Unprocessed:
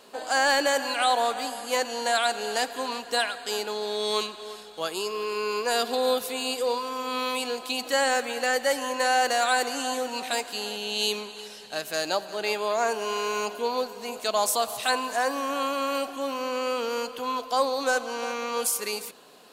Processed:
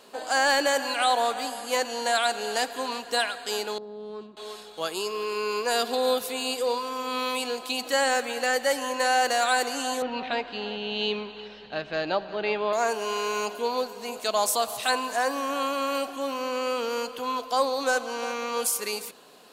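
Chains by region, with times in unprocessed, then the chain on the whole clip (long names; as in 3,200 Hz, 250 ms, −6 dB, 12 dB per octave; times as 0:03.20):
0:03.78–0:04.37: resonant band-pass 140 Hz, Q 0.95 + highs frequency-modulated by the lows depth 0.11 ms
0:10.02–0:12.73: low-pass filter 3,600 Hz 24 dB per octave + low-shelf EQ 190 Hz +10.5 dB
whole clip: no processing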